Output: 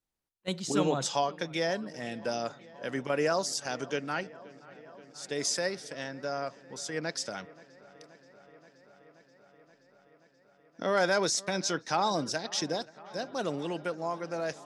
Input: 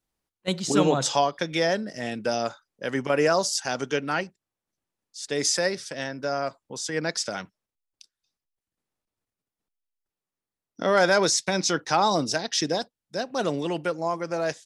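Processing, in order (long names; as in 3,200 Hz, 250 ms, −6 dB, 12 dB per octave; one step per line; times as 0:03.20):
delay with a low-pass on its return 528 ms, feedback 80%, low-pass 2,800 Hz, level −21 dB
level −6.5 dB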